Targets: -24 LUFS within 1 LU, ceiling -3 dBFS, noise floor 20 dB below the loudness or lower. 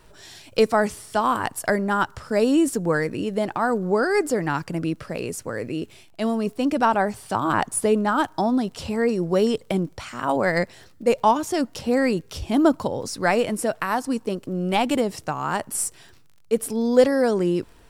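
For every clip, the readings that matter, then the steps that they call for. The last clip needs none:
tick rate 32 per s; loudness -23.0 LUFS; peak level -3.0 dBFS; loudness target -24.0 LUFS
-> de-click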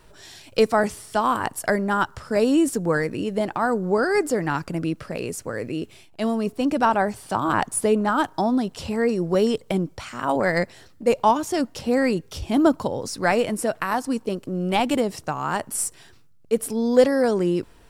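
tick rate 0.50 per s; loudness -23.0 LUFS; peak level -3.0 dBFS; loudness target -24.0 LUFS
-> trim -1 dB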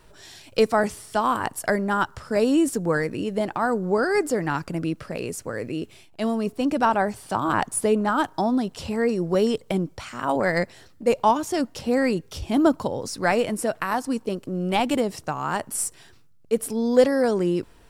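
loudness -24.0 LUFS; peak level -4.0 dBFS; noise floor -52 dBFS

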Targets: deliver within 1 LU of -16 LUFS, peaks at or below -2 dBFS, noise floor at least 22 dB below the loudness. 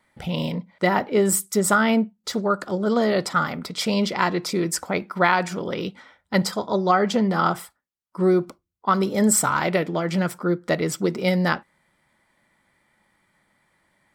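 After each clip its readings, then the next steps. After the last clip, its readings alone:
loudness -22.5 LUFS; peak level -4.0 dBFS; loudness target -16.0 LUFS
-> trim +6.5 dB; peak limiter -2 dBFS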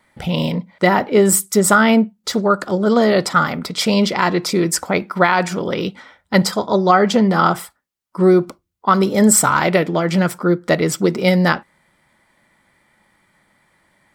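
loudness -16.5 LUFS; peak level -2.0 dBFS; noise floor -68 dBFS

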